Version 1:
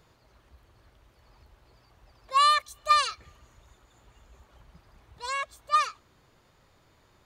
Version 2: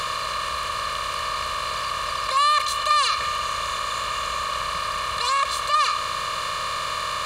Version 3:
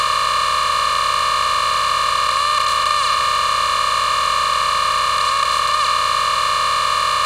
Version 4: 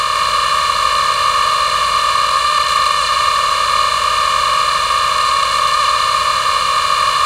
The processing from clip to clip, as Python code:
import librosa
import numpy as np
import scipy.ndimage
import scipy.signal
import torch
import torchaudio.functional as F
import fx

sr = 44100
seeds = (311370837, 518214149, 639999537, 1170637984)

y1 = fx.bin_compress(x, sr, power=0.4)
y1 = fx.env_flatten(y1, sr, amount_pct=50)
y1 = y1 * 10.0 ** (-2.0 / 20.0)
y2 = fx.bin_compress(y1, sr, power=0.2)
y2 = y2 * 10.0 ** (-3.0 / 20.0)
y3 = y2 + 10.0 ** (-3.5 / 20.0) * np.pad(y2, (int(156 * sr / 1000.0), 0))[:len(y2)]
y3 = y3 * 10.0 ** (1.5 / 20.0)